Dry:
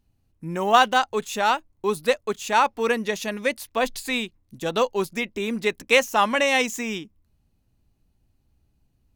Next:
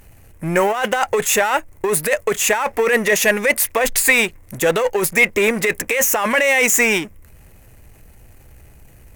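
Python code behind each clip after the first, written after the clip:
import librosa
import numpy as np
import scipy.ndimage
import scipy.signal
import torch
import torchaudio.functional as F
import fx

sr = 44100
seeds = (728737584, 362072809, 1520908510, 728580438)

y = fx.power_curve(x, sr, exponent=0.7)
y = fx.over_compress(y, sr, threshold_db=-20.0, ratio=-1.0)
y = fx.graphic_eq_10(y, sr, hz=(250, 500, 2000, 4000, 8000, 16000), db=(-6, 7, 12, -8, 5, 10))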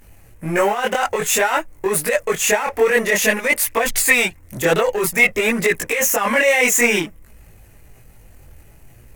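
y = fx.chorus_voices(x, sr, voices=2, hz=0.53, base_ms=21, depth_ms=4.4, mix_pct=55)
y = y * librosa.db_to_amplitude(2.5)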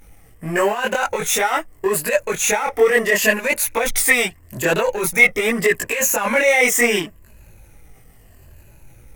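y = fx.spec_ripple(x, sr, per_octave=1.4, drift_hz=-0.77, depth_db=8)
y = y * librosa.db_to_amplitude(-1.5)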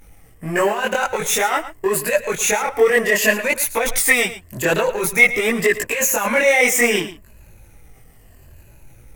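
y = x + 10.0 ** (-14.0 / 20.0) * np.pad(x, (int(111 * sr / 1000.0), 0))[:len(x)]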